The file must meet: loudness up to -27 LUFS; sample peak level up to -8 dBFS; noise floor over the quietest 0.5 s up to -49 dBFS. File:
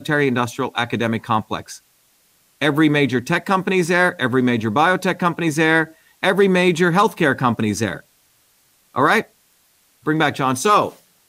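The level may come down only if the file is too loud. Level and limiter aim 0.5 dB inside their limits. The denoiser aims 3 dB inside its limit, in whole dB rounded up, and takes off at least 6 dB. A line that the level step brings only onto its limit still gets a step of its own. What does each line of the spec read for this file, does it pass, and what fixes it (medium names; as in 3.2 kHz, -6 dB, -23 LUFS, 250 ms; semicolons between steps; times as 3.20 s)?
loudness -18.0 LUFS: fail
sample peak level -5.0 dBFS: fail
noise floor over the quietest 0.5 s -59 dBFS: pass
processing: trim -9.5 dB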